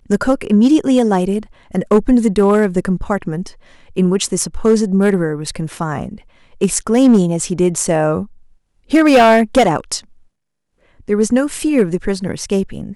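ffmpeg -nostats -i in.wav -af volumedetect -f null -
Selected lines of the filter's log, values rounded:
mean_volume: -15.3 dB
max_volume: -4.5 dB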